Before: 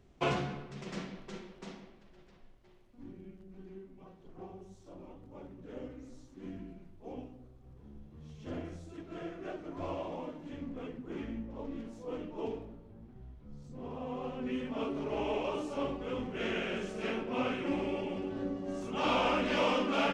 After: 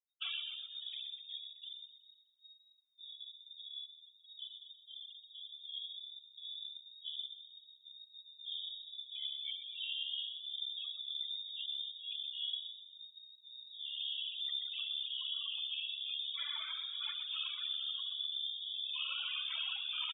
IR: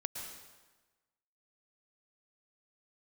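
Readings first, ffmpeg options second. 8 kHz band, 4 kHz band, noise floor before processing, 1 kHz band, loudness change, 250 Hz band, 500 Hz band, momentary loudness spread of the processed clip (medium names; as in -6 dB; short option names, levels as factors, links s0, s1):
no reading, +10.0 dB, -59 dBFS, under -20 dB, -3.0 dB, under -40 dB, under -40 dB, 14 LU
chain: -filter_complex "[0:a]acompressor=threshold=0.0158:ratio=5,equalizer=f=140:w=0.84:g=-4.5,bandreject=f=210.7:t=h:w=4,bandreject=f=421.4:t=h:w=4,bandreject=f=632.1:t=h:w=4,bandreject=f=842.8:t=h:w=4,bandreject=f=1053.5:t=h:w=4,bandreject=f=1264.2:t=h:w=4,bandreject=f=1474.9:t=h:w=4,bandreject=f=1685.6:t=h:w=4,asplit=2[s0][s1];[1:a]atrim=start_sample=2205[s2];[s1][s2]afir=irnorm=-1:irlink=0,volume=0.224[s3];[s0][s3]amix=inputs=2:normalize=0,acrossover=split=2800[s4][s5];[s5]acompressor=threshold=0.00158:ratio=4:attack=1:release=60[s6];[s4][s6]amix=inputs=2:normalize=0,aeval=exprs='val(0)*sin(2*PI*35*n/s)':c=same,asoftclip=type=tanh:threshold=0.015,afftfilt=real='re*gte(hypot(re,im),0.00891)':imag='im*gte(hypot(re,im),0.00891)':win_size=1024:overlap=0.75,highpass=57,asplit=8[s7][s8][s9][s10][s11][s12][s13][s14];[s8]adelay=125,afreqshift=-49,volume=0.266[s15];[s9]adelay=250,afreqshift=-98,volume=0.16[s16];[s10]adelay=375,afreqshift=-147,volume=0.0955[s17];[s11]adelay=500,afreqshift=-196,volume=0.0575[s18];[s12]adelay=625,afreqshift=-245,volume=0.0347[s19];[s13]adelay=750,afreqshift=-294,volume=0.0207[s20];[s14]adelay=875,afreqshift=-343,volume=0.0124[s21];[s7][s15][s16][s17][s18][s19][s20][s21]amix=inputs=8:normalize=0,lowpass=f=3200:t=q:w=0.5098,lowpass=f=3200:t=q:w=0.6013,lowpass=f=3200:t=q:w=0.9,lowpass=f=3200:t=q:w=2.563,afreqshift=-3800,asplit=2[s22][s23];[s23]adelay=2.8,afreqshift=1.8[s24];[s22][s24]amix=inputs=2:normalize=1,volume=2.24"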